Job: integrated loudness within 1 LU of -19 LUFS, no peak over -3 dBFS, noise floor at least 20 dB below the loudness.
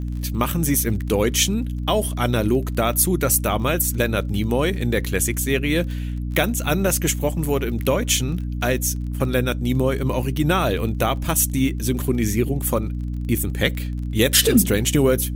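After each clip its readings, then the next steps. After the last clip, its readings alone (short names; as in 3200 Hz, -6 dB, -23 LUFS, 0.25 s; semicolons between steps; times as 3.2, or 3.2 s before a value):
ticks 24/s; hum 60 Hz; harmonics up to 300 Hz; hum level -24 dBFS; loudness -21.0 LUFS; peak -2.0 dBFS; loudness target -19.0 LUFS
-> de-click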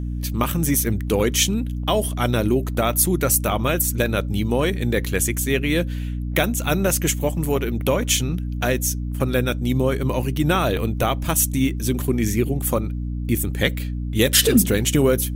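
ticks 1.6/s; hum 60 Hz; harmonics up to 300 Hz; hum level -24 dBFS
-> notches 60/120/180/240/300 Hz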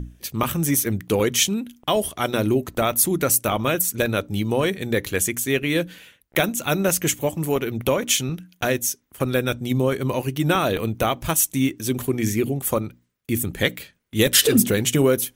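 hum none; loudness -21.5 LUFS; peak -2.5 dBFS; loudness target -19.0 LUFS
-> gain +2.5 dB; limiter -3 dBFS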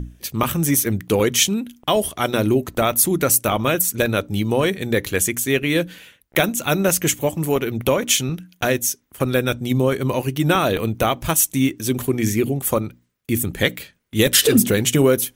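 loudness -19.5 LUFS; peak -3.0 dBFS; noise floor -61 dBFS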